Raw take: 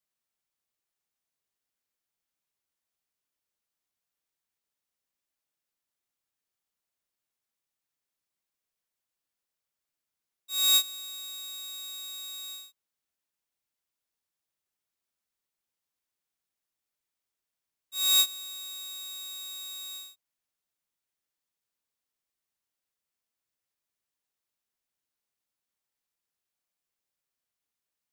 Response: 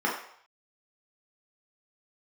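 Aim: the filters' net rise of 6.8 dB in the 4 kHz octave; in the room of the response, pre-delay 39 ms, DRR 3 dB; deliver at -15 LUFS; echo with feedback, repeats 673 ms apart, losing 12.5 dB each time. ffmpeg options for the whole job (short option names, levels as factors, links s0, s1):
-filter_complex "[0:a]equalizer=f=4000:t=o:g=7,aecho=1:1:673|1346|2019:0.237|0.0569|0.0137,asplit=2[s0][s1];[1:a]atrim=start_sample=2205,adelay=39[s2];[s1][s2]afir=irnorm=-1:irlink=0,volume=0.168[s3];[s0][s3]amix=inputs=2:normalize=0,volume=2.66"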